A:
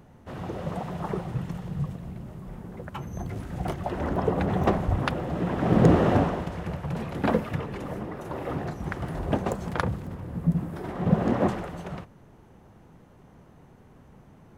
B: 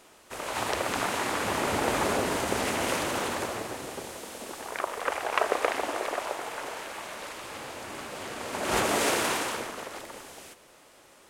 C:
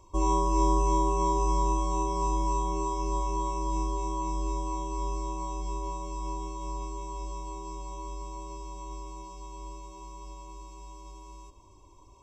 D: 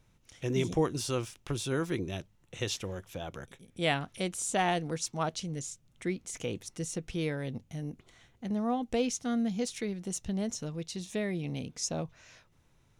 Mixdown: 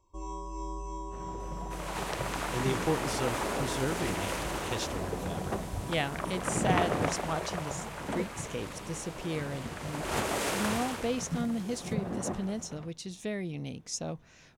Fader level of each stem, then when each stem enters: −11.5, −6.0, −14.0, −2.0 decibels; 0.85, 1.40, 0.00, 2.10 seconds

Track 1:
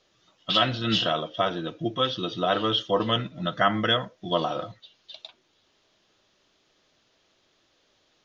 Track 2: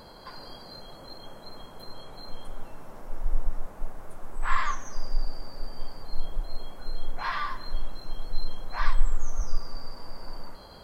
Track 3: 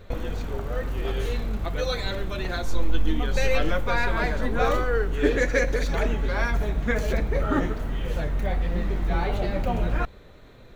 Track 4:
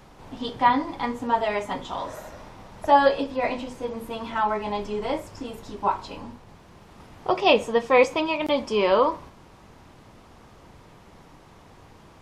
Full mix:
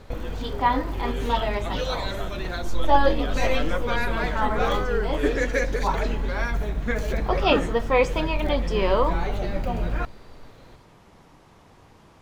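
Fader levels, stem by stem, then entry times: −13.0, −14.0, −1.5, −2.5 decibels; 0.80, 0.00, 0.00, 0.00 seconds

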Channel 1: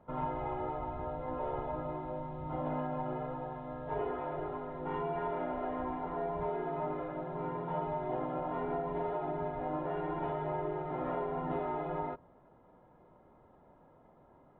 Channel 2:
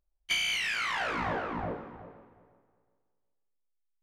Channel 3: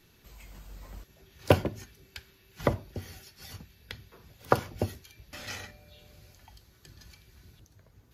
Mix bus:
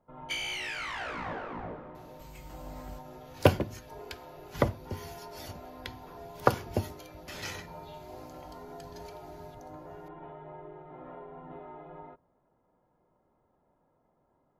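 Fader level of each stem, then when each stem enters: −10.5, −5.5, 0.0 decibels; 0.00, 0.00, 1.95 seconds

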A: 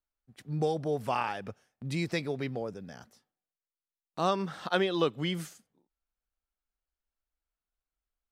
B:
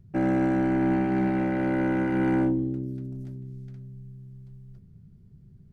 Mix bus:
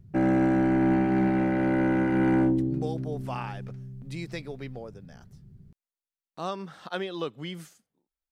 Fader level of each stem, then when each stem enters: −5.0, +1.0 decibels; 2.20, 0.00 seconds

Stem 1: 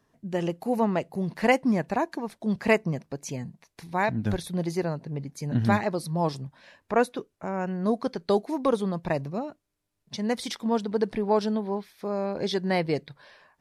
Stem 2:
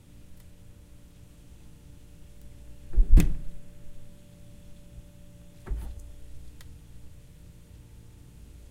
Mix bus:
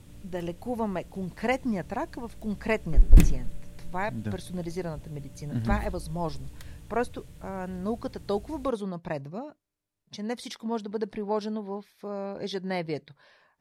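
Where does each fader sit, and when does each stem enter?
−5.5, +3.0 decibels; 0.00, 0.00 seconds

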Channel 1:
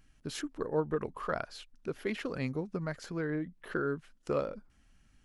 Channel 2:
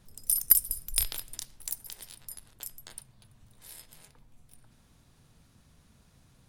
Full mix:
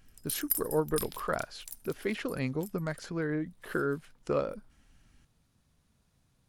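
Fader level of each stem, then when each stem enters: +2.0, −9.5 decibels; 0.00, 0.00 seconds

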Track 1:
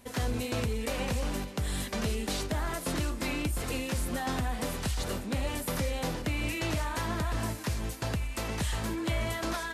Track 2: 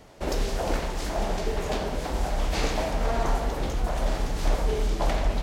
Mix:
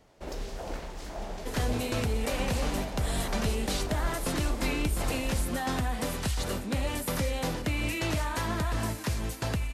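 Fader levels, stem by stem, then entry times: +1.5, −10.0 decibels; 1.40, 0.00 seconds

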